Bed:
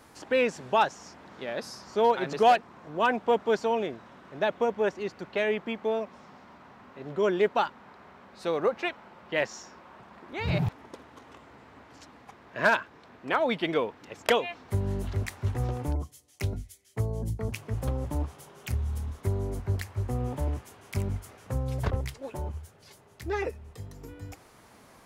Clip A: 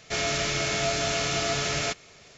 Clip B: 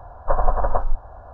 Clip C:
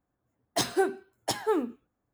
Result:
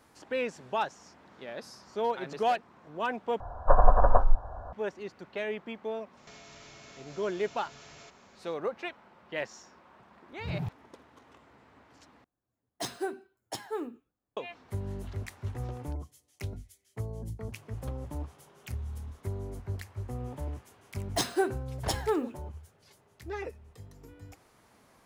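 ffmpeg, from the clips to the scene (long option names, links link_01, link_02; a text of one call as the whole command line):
ffmpeg -i bed.wav -i cue0.wav -i cue1.wav -i cue2.wav -filter_complex "[3:a]asplit=2[link_01][link_02];[0:a]volume=-7dB[link_03];[1:a]acompressor=threshold=-40dB:ratio=10:attack=12:release=32:knee=1:detection=rms[link_04];[link_03]asplit=3[link_05][link_06][link_07];[link_05]atrim=end=3.404[link_08];[2:a]atrim=end=1.33,asetpts=PTS-STARTPTS,volume=-0.5dB[link_09];[link_06]atrim=start=4.726:end=12.244[link_10];[link_01]atrim=end=2.13,asetpts=PTS-STARTPTS,volume=-8.5dB[link_11];[link_07]atrim=start=14.366[link_12];[link_04]atrim=end=2.37,asetpts=PTS-STARTPTS,volume=-11.5dB,afade=type=in:duration=0.004:curve=hsin,afade=type=out:start_time=2.366:duration=0.004:curve=hsin,adelay=6170[link_13];[link_02]atrim=end=2.13,asetpts=PTS-STARTPTS,volume=-2dB,afade=type=in:duration=0.004:curve=hsin,afade=type=out:start_time=2.126:duration=0.004:curve=hsin,adelay=20600[link_14];[link_08][link_09]acrossfade=duration=0.004:curve1=hsin:curve2=hsin[link_15];[link_15][link_10]acrossfade=duration=0.004:curve1=hsin:curve2=hsin[link_16];[link_16][link_11]acrossfade=duration=0.004:curve1=hsin:curve2=hsin[link_17];[link_17][link_12]acrossfade=duration=0.004:curve1=hsin:curve2=hsin[link_18];[link_18][link_13][link_14]amix=inputs=3:normalize=0" out.wav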